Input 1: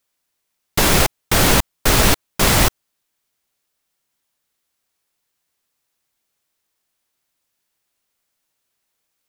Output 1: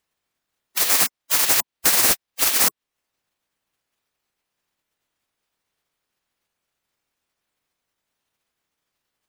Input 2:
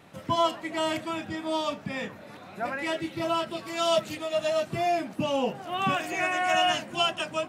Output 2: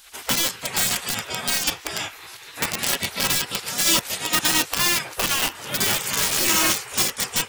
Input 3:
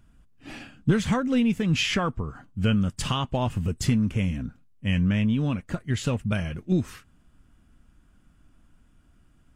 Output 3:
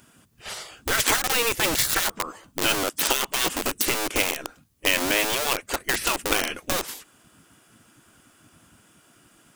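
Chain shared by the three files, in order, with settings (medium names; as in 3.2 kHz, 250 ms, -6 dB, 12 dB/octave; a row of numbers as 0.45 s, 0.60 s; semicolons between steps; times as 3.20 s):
dynamic bell 3.3 kHz, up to -6 dB, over -38 dBFS, Q 2; in parallel at -8 dB: bit crusher 4-bit; on the sum: treble shelf 4.4 kHz +10 dB; compression 2:1, threshold -24 dBFS; spectral gate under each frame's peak -15 dB weak; peak normalisation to -3 dBFS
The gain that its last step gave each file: +4.0 dB, +12.5 dB, +11.0 dB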